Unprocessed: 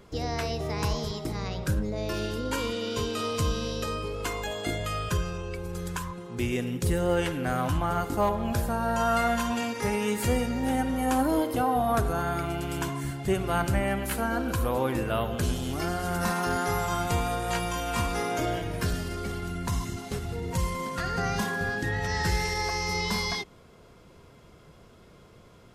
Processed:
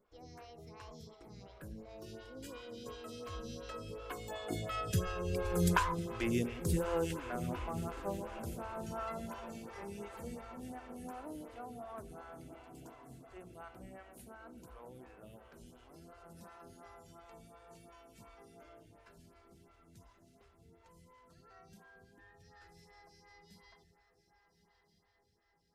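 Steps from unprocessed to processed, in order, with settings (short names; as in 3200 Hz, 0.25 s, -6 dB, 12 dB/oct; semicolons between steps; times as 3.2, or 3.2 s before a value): Doppler pass-by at 5.68, 12 m/s, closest 3.2 m; diffused feedback echo 1.237 s, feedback 51%, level -12 dB; photocell phaser 2.8 Hz; gain +7 dB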